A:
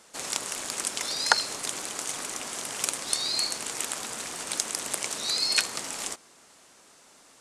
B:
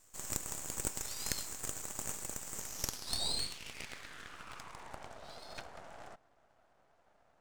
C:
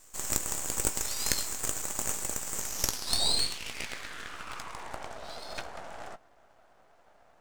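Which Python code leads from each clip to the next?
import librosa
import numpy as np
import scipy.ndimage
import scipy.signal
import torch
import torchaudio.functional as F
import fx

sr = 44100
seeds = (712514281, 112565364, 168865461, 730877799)

y1 = fx.filter_sweep_bandpass(x, sr, from_hz=7600.0, to_hz=690.0, start_s=2.54, end_s=5.13, q=3.1)
y1 = np.maximum(y1, 0.0)
y1 = y1 * 10.0 ** (1.0 / 20.0)
y2 = fx.peak_eq(y1, sr, hz=120.0, db=-4.0, octaves=1.8)
y2 = fx.doubler(y2, sr, ms=17.0, db=-12)
y2 = y2 * 10.0 ** (8.0 / 20.0)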